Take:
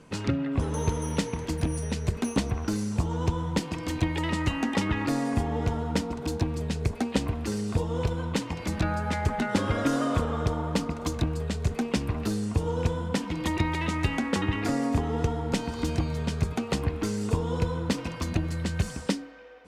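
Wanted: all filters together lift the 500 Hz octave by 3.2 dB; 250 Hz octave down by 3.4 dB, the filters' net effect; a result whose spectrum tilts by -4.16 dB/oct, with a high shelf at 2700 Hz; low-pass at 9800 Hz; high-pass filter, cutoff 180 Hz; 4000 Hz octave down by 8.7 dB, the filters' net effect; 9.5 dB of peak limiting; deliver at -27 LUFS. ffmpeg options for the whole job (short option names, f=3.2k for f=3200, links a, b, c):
-af "highpass=180,lowpass=9.8k,equalizer=f=250:t=o:g=-4,equalizer=f=500:t=o:g=5,highshelf=f=2.7k:g=-4.5,equalizer=f=4k:t=o:g=-8,volume=5.5dB,alimiter=limit=-15.5dB:level=0:latency=1"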